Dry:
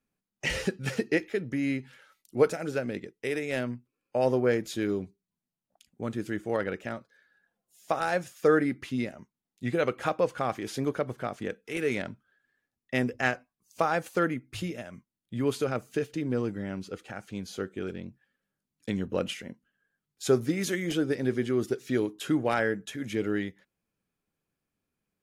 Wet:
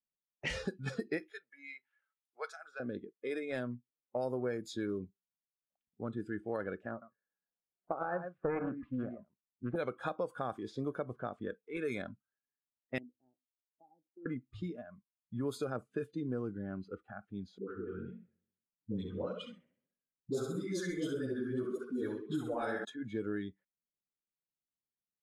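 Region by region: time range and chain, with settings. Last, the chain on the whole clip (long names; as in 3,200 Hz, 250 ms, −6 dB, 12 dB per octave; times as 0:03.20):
0:01.33–0:02.80: high-pass filter 1,200 Hz + high-shelf EQ 5,300 Hz +10 dB
0:06.91–0:09.76: low-pass filter 1,700 Hz + single-tap delay 107 ms −9 dB + highs frequency-modulated by the lows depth 0.38 ms
0:12.98–0:14.26: formant resonators in series u + high-frequency loss of the air 400 metres + tuned comb filter 640 Hz, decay 0.24 s, mix 70%
0:17.58–0:22.85: flutter between parallel walls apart 11.4 metres, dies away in 0.77 s + flanger 1.7 Hz, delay 4.3 ms, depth 9 ms, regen −1% + all-pass dispersion highs, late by 114 ms, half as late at 730 Hz
whole clip: noise reduction from a noise print of the clip's start 17 dB; low-pass that shuts in the quiet parts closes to 1,100 Hz, open at −23.5 dBFS; downward compressor 6 to 1, threshold −26 dBFS; level −5.5 dB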